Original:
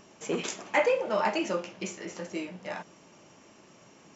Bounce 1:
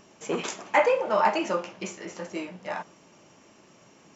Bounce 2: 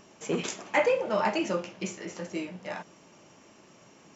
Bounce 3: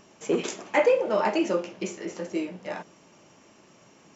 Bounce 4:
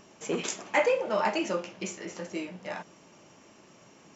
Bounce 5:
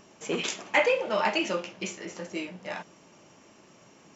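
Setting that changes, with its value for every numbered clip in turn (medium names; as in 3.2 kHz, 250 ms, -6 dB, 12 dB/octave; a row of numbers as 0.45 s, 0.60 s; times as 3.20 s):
dynamic bell, frequency: 1 kHz, 120 Hz, 370 Hz, 10 kHz, 3.1 kHz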